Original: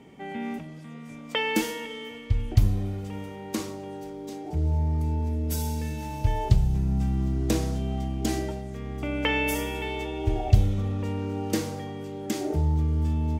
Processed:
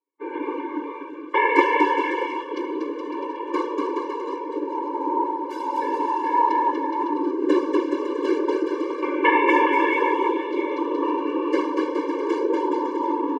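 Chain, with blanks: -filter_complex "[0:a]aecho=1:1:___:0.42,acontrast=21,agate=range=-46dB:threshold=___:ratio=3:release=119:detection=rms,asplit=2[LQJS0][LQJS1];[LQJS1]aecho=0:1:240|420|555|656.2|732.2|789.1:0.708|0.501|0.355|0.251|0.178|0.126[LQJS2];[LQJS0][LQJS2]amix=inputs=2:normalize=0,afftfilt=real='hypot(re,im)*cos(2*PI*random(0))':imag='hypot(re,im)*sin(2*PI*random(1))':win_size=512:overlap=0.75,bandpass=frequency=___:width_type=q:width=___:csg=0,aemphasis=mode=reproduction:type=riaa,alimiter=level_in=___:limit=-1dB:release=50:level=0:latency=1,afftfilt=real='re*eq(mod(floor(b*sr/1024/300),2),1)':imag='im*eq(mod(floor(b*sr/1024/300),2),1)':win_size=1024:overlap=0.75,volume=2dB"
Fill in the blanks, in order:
1, -31dB, 1.1k, 1, 14dB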